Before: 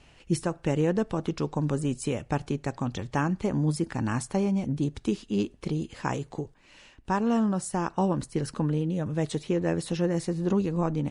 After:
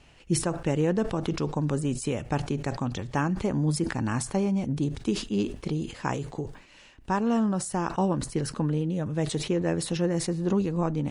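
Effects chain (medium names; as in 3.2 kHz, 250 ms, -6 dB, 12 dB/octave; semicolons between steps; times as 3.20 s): decay stretcher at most 110 dB/s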